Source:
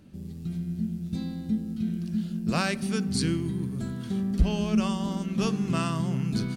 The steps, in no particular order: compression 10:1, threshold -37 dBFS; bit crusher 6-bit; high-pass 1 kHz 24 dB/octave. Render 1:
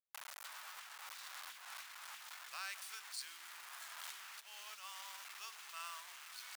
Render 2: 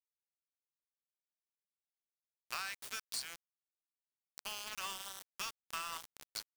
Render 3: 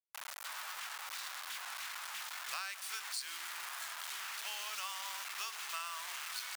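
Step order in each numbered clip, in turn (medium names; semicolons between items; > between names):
bit crusher > compression > high-pass; high-pass > bit crusher > compression; bit crusher > high-pass > compression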